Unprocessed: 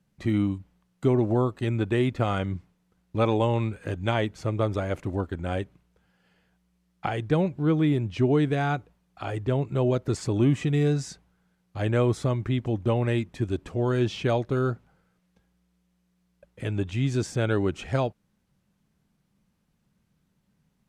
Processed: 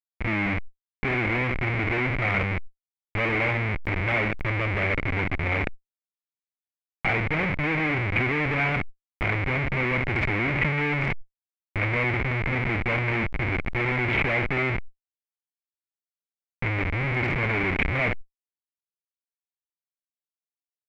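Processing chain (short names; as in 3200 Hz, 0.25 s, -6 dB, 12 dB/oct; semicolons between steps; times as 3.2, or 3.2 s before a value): flutter echo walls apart 11.1 m, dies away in 0.29 s; Schmitt trigger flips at -34 dBFS; synth low-pass 2200 Hz, resonance Q 9.9; sustainer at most 43 dB/s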